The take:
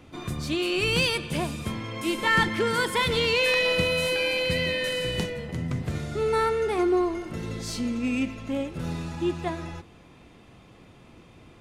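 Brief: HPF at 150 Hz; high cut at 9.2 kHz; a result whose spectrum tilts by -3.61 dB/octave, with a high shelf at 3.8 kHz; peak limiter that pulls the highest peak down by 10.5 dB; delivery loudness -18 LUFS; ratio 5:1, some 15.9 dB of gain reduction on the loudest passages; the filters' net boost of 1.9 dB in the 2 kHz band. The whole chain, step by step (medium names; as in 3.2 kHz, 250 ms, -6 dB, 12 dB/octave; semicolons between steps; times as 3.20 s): high-pass 150 Hz; low-pass 9.2 kHz; peaking EQ 2 kHz +4.5 dB; treble shelf 3.8 kHz -7 dB; compression 5:1, threshold -34 dBFS; trim +22 dB; peak limiter -10.5 dBFS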